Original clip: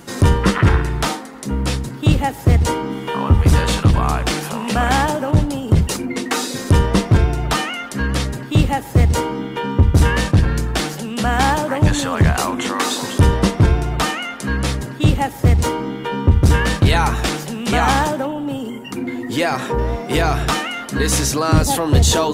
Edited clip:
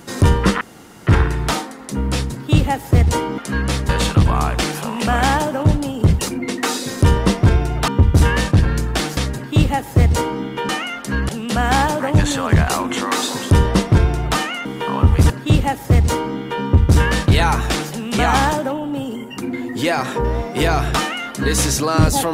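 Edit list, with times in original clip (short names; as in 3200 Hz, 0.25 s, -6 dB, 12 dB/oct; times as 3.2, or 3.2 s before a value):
0.61 insert room tone 0.46 s
2.92–3.57 swap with 14.33–14.84
7.56–8.16 swap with 9.68–10.97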